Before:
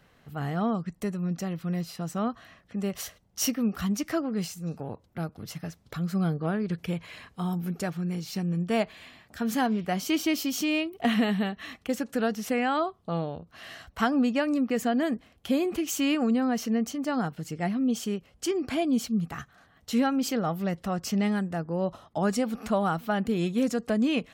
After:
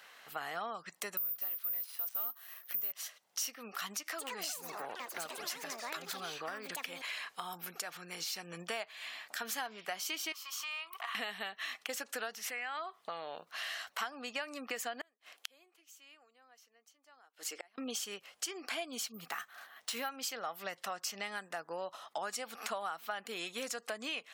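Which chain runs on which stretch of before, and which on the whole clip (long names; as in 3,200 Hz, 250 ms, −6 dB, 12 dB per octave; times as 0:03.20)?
0:01.17–0:02.92: gap after every zero crossing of 0.068 ms + high-shelf EQ 3,100 Hz +5 dB + bad sample-rate conversion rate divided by 3×, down filtered, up zero stuff
0:03.95–0:08.20: downward compressor 2.5 to 1, threshold −34 dBFS + delay with pitch and tempo change per echo 231 ms, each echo +7 semitones, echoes 3, each echo −6 dB
0:10.32–0:11.15: high-pass with resonance 1,100 Hz, resonance Q 8.6 + downward compressor 3 to 1, threshold −46 dBFS
0:12.38–0:13.50: parametric band 2,000 Hz +7 dB 0.69 octaves + downward compressor 2.5 to 1, threshold −35 dBFS
0:15.01–0:17.78: high-pass filter 280 Hz 24 dB per octave + gate with flip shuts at −28 dBFS, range −35 dB
0:19.14–0:20.09: bad sample-rate conversion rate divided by 3×, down none, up hold + high-shelf EQ 8,400 Hz −4 dB
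whole clip: high-pass filter 720 Hz 12 dB per octave; tilt shelving filter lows −3.5 dB; downward compressor 5 to 1, threshold −44 dBFS; level +6.5 dB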